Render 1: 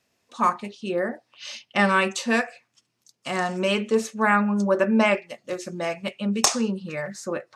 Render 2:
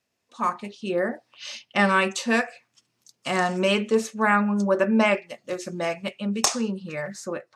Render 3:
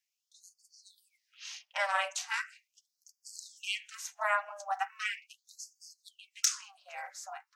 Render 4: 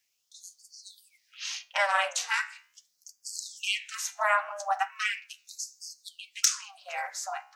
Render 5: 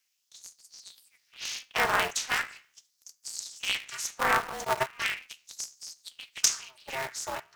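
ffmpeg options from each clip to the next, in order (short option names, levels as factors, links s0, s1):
-af "dynaudnorm=f=150:g=7:m=3.76,volume=0.447"
-af "aexciter=amount=1.4:drive=6.4:freq=5400,aeval=exprs='val(0)*sin(2*PI*200*n/s)':c=same,afftfilt=real='re*gte(b*sr/1024,500*pow(4500/500,0.5+0.5*sin(2*PI*0.39*pts/sr)))':imag='im*gte(b*sr/1024,500*pow(4500/500,0.5+0.5*sin(2*PI*0.39*pts/sr)))':win_size=1024:overlap=0.75,volume=0.501"
-filter_complex "[0:a]asplit=2[s0][s1];[s1]acompressor=threshold=0.00794:ratio=6,volume=1.26[s2];[s0][s2]amix=inputs=2:normalize=0,flanger=delay=9.3:depth=5.7:regen=83:speed=0.61:shape=sinusoidal,volume=2.37"
-filter_complex "[0:a]acrossover=split=890|3100[s0][s1][s2];[s0]acrusher=bits=6:mix=0:aa=0.000001[s3];[s3][s1][s2]amix=inputs=3:normalize=0,aeval=exprs='val(0)*sgn(sin(2*PI*130*n/s))':c=same"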